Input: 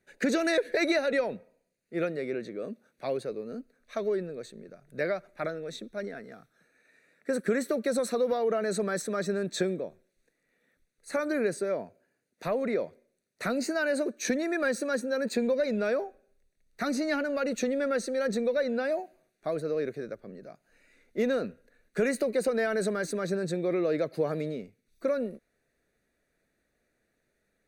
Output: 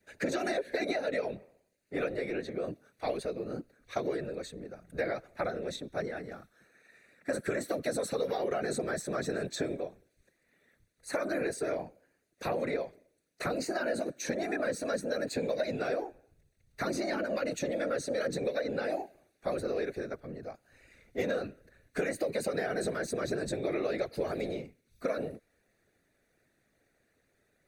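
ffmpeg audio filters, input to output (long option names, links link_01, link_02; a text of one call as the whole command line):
ffmpeg -i in.wav -filter_complex "[0:a]afftfilt=real='hypot(re,im)*cos(2*PI*random(0))':imag='hypot(re,im)*sin(2*PI*random(1))':win_size=512:overlap=0.75,adynamicequalizer=threshold=0.00282:dfrequency=1100:dqfactor=1.6:tfrequency=1100:tqfactor=1.6:attack=5:release=100:ratio=0.375:range=2.5:mode=cutabove:tftype=bell,acrossover=split=450|1000[link_01][link_02][link_03];[link_01]acompressor=threshold=-47dB:ratio=4[link_04];[link_02]acompressor=threshold=-43dB:ratio=4[link_05];[link_03]acompressor=threshold=-48dB:ratio=4[link_06];[link_04][link_05][link_06]amix=inputs=3:normalize=0,volume=9dB" out.wav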